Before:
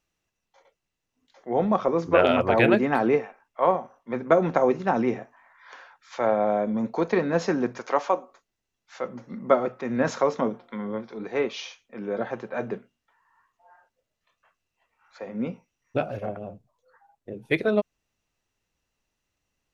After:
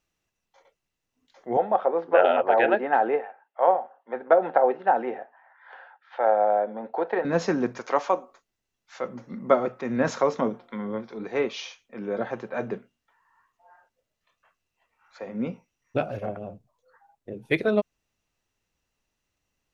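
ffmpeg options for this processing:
-filter_complex "[0:a]asettb=1/sr,asplit=3[s0][s1][s2];[s0]atrim=end=1.574[s3];[s1]atrim=start=1.57:end=7.25,asetpts=PTS-STARTPTS,afade=t=in:d=0.004:c=qsin,afade=t=out:st=5.676:d=0.004:c=qsin,highpass=490,equalizer=f=520:t=q:w=4:g=3,equalizer=f=800:t=q:w=4:g=9,equalizer=f=1100:t=q:w=4:g=-8,equalizer=f=1600:t=q:w=4:g=3,equalizer=f=2300:t=q:w=4:g=-9,lowpass=f=2900:w=0.5412,lowpass=f=2900:w=1.3066[s4];[s2]atrim=start=7.246[s5];[s3][s4]acrossfade=d=0.004:c1=hsin:c2=qsin[s6];[s6][s5]acrossfade=d=0.004:c1=qsin:c2=hsin"

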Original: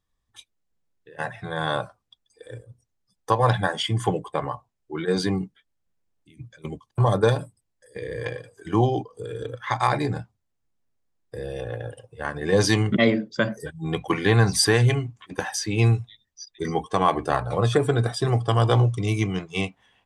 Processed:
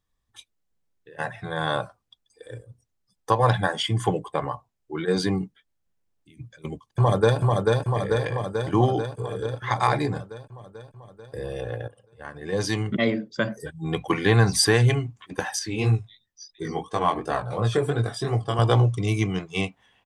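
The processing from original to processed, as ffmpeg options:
-filter_complex "[0:a]asplit=2[s0][s1];[s1]afade=t=in:st=6.51:d=0.01,afade=t=out:st=7.39:d=0.01,aecho=0:1:440|880|1320|1760|2200|2640|3080|3520|3960|4400|4840|5280:0.794328|0.55603|0.389221|0.272455|0.190718|0.133503|0.0934519|0.0654163|0.0457914|0.032054|0.0224378|0.0157065[s2];[s0][s2]amix=inputs=2:normalize=0,asettb=1/sr,asplit=3[s3][s4][s5];[s3]atrim=end=15.594[s6];[s4]atrim=start=15.59:end=18.59,asetpts=PTS-STARTPTS,afade=t=in:d=0.004:c=qsin,afade=t=out:st=2.996:d=0.004:c=qsin,flanger=delay=18:depth=5.3:speed=2.9[s7];[s5]atrim=start=18.586[s8];[s6][s7]acrossfade=d=0.004:c1=hsin:c2=qsin[s9];[s9][s8]acrossfade=d=0.004:c1=qsin:c2=hsin,asplit=2[s10][s11];[s10]atrim=end=11.88,asetpts=PTS-STARTPTS,afade=t=out:st=11.876:d=0.004:c=hsin:silence=0.199526[s12];[s11]atrim=start=11.88,asetpts=PTS-STARTPTS,afade=t=in:d=2.13:silence=0.199526[s13];[s12][s13]concat=n=2:v=0:a=1"

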